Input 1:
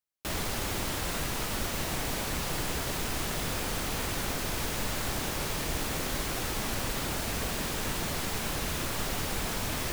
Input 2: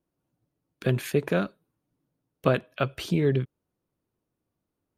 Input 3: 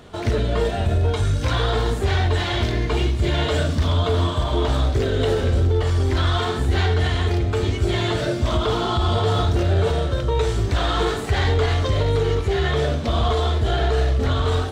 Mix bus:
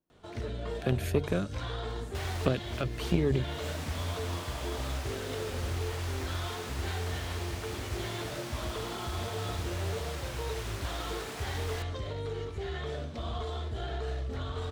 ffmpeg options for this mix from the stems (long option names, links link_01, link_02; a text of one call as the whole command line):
ffmpeg -i stem1.wav -i stem2.wav -i stem3.wav -filter_complex "[0:a]highpass=440,highshelf=frequency=10000:gain=-12,adelay=1900,volume=-2dB[link_01];[1:a]volume=-0.5dB,asplit=2[link_02][link_03];[2:a]adelay=100,volume=-11dB[link_04];[link_03]apad=whole_len=521413[link_05];[link_01][link_05]sidechaincompress=threshold=-37dB:ratio=8:attack=12:release=220[link_06];[link_06][link_02][link_04]amix=inputs=3:normalize=0,bandreject=frequency=48:width_type=h:width=4,bandreject=frequency=96:width_type=h:width=4,bandreject=frequency=144:width_type=h:width=4,acrossover=split=460|3000[link_07][link_08][link_09];[link_08]acompressor=threshold=-32dB:ratio=6[link_10];[link_07][link_10][link_09]amix=inputs=3:normalize=0,aeval=exprs='0.266*(cos(1*acos(clip(val(0)/0.266,-1,1)))-cos(1*PI/2))+0.0376*(cos(3*acos(clip(val(0)/0.266,-1,1)))-cos(3*PI/2))':channel_layout=same" out.wav